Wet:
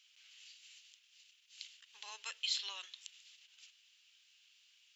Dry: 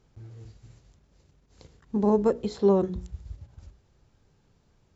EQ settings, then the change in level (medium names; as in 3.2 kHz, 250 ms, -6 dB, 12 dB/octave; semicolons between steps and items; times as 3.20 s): ladder high-pass 2.6 kHz, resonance 65%; +16.5 dB